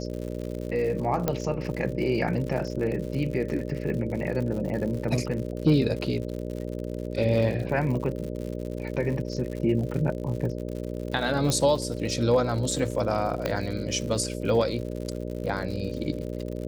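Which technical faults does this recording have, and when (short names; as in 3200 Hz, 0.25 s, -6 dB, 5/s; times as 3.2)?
buzz 60 Hz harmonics 10 -33 dBFS
crackle 97/s -34 dBFS
1.28 pop -11 dBFS
11.5 pop -12 dBFS
13.46 pop -13 dBFS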